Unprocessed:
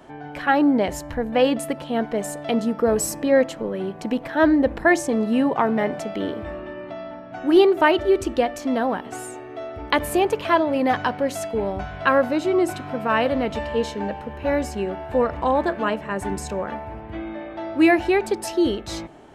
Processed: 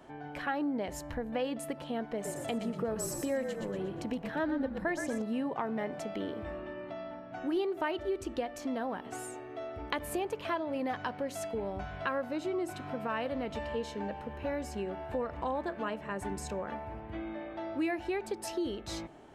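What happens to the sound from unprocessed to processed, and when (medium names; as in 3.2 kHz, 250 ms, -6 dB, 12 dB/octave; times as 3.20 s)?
2.11–5.22 s: frequency-shifting echo 119 ms, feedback 44%, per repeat -43 Hz, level -7.5 dB
whole clip: compression 2.5:1, threshold -26 dBFS; trim -7.5 dB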